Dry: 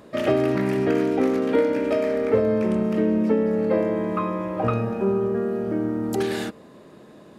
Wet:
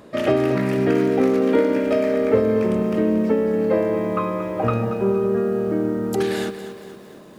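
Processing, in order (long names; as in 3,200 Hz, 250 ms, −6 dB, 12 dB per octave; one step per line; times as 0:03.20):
feedback echo at a low word length 230 ms, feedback 55%, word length 8 bits, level −11.5 dB
level +2 dB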